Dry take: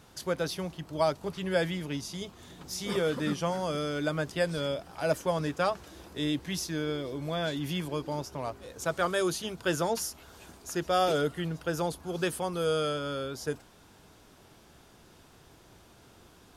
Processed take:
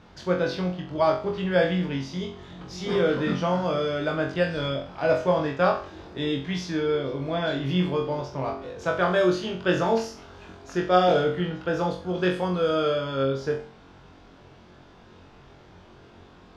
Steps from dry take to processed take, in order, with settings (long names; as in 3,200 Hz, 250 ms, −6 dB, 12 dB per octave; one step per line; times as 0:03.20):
high-frequency loss of the air 200 metres
on a send: flutter between parallel walls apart 3.8 metres, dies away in 0.4 s
on the sum: level +4.5 dB